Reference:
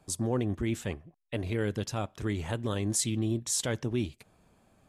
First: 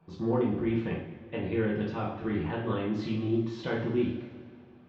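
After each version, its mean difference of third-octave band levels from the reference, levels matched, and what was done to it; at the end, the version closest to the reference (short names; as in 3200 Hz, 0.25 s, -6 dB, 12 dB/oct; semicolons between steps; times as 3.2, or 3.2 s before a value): 9.0 dB: Gaussian blur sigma 3 samples; low shelf 71 Hz -10 dB; notch 630 Hz, Q 19; two-slope reverb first 0.55 s, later 2.5 s, from -16 dB, DRR -5.5 dB; gain -2.5 dB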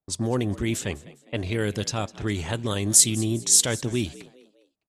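4.5 dB: gate -55 dBFS, range -32 dB; low-pass opened by the level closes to 1300 Hz, open at -25.5 dBFS; high shelf 3500 Hz +12 dB; on a send: frequency-shifting echo 0.203 s, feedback 40%, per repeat +67 Hz, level -20 dB; on the sum: gain +4 dB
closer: second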